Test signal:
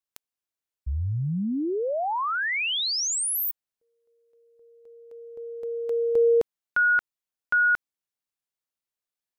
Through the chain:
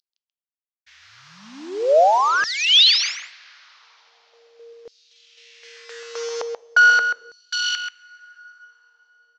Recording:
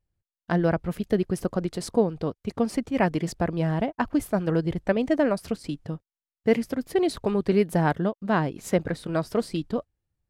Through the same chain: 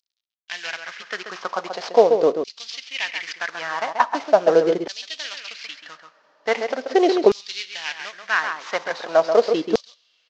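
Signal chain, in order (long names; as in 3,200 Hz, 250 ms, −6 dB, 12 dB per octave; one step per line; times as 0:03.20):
variable-slope delta modulation 32 kbit/s
slap from a distant wall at 23 metres, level −8 dB
coupled-rooms reverb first 0.4 s, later 4.6 s, from −18 dB, DRR 17.5 dB
auto-filter high-pass saw down 0.41 Hz 380–4,600 Hz
level +7 dB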